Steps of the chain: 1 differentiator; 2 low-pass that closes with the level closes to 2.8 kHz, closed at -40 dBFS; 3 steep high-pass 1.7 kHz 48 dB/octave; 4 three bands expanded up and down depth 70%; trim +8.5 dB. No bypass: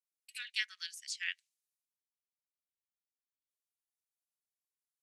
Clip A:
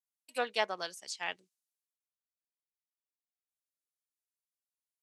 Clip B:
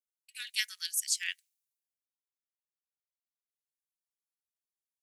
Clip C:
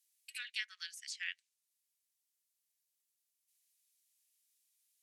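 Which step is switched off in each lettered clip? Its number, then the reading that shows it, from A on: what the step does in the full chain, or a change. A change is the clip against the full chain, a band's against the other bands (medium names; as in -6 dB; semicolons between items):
3, 1 kHz band +28.0 dB; 2, momentary loudness spread change +4 LU; 4, 1 kHz band +2.5 dB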